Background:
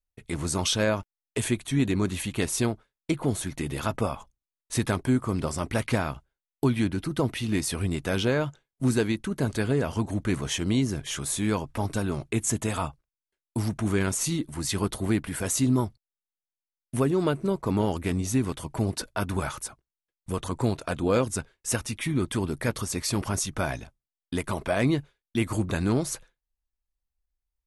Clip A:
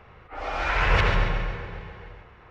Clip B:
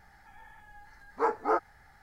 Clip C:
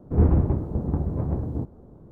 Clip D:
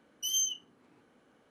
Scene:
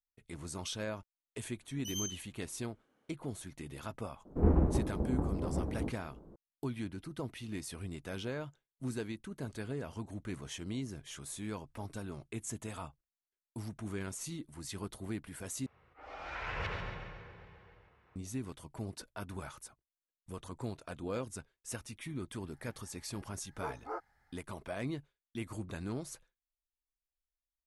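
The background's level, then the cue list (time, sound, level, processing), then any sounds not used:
background -14.5 dB
1.62 s: add D -9.5 dB
4.25 s: add C -4 dB + peaking EQ 110 Hz -14 dB
15.66 s: replace with A -16 dB + high-pass 58 Hz
22.41 s: add B -14 dB

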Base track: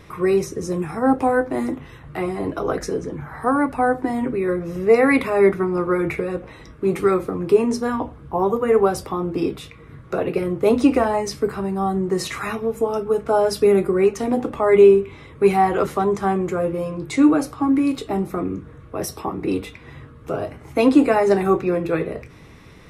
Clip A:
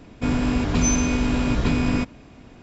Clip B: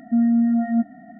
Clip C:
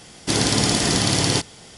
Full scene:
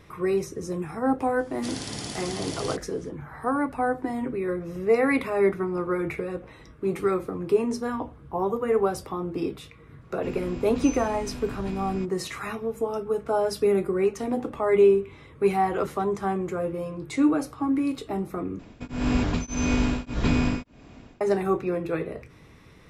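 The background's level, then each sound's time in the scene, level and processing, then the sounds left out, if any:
base track -6.5 dB
1.35 s: add C -15.5 dB, fades 0.05 s
10.01 s: add A -15.5 dB
18.59 s: replace with A -0.5 dB + tremolo of two beating tones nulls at 1.7 Hz
not used: B

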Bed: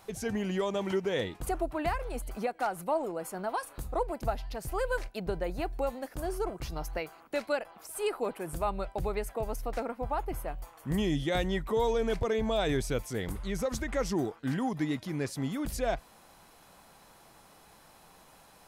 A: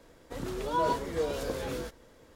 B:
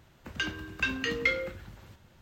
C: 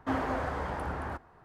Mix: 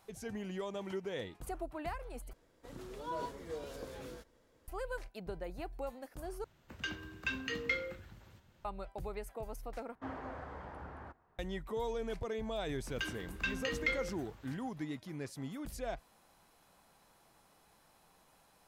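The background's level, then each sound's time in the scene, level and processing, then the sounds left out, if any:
bed -9.5 dB
2.33 s: replace with A -12 dB
6.44 s: replace with B -7.5 dB
9.95 s: replace with C -12.5 dB + treble shelf 5.5 kHz -10.5 dB
12.61 s: add B -7 dB

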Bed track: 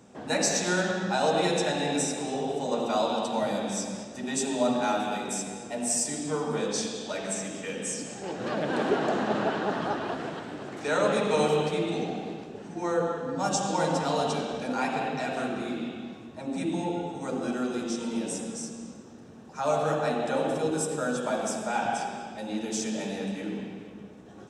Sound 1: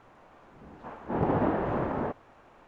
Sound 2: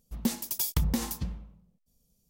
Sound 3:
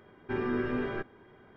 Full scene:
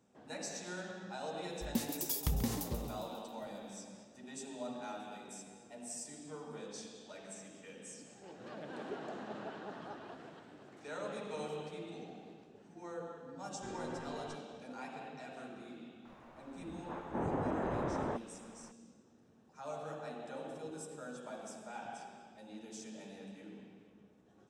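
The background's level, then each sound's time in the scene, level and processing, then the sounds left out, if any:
bed track -17.5 dB
1.50 s: add 2 -7 dB + frequency-shifting echo 135 ms, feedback 59%, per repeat +61 Hz, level -10 dB
13.33 s: add 3 -15.5 dB
16.05 s: add 1 -2.5 dB + compression, threshold -29 dBFS

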